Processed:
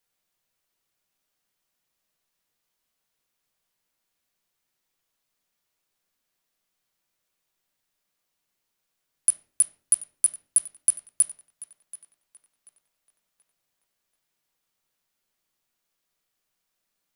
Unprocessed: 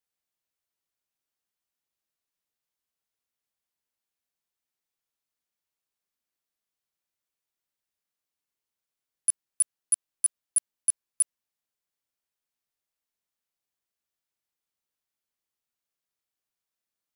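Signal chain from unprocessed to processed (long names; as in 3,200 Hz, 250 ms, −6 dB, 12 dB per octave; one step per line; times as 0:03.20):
downward compressor, threshold −25 dBFS, peak gain reduction 6.5 dB
tape delay 733 ms, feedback 48%, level −13 dB, low-pass 4,800 Hz
on a send at −5.5 dB: convolution reverb RT60 0.40 s, pre-delay 4 ms
on the sum: level +8.5 dB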